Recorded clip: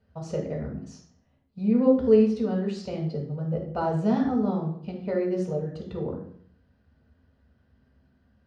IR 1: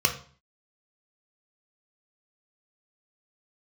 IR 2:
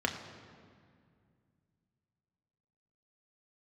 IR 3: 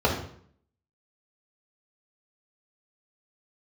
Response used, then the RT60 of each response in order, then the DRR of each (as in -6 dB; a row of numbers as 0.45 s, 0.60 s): 3; 0.45 s, 2.2 s, 0.60 s; 3.5 dB, 2.0 dB, -4.0 dB